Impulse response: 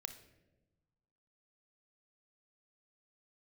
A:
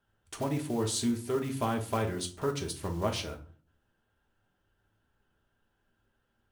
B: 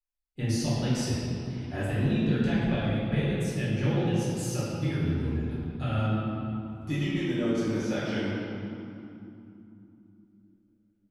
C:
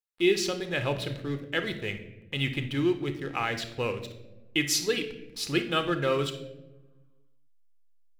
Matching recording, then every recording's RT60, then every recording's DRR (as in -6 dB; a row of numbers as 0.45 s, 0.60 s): C; 0.45 s, 2.9 s, 1.2 s; 3.0 dB, -10.5 dB, 8.0 dB